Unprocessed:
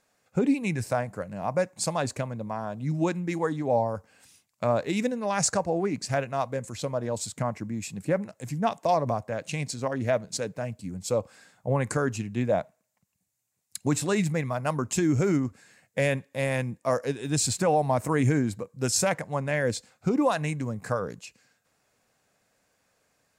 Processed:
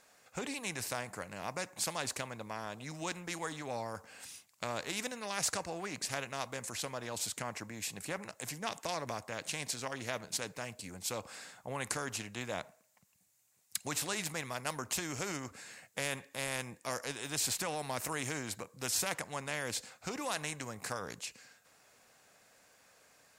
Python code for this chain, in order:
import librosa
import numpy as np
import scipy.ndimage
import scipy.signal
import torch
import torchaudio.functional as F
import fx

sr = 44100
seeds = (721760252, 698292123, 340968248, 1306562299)

y = fx.low_shelf(x, sr, hz=370.0, db=-8.5)
y = fx.spectral_comp(y, sr, ratio=2.0)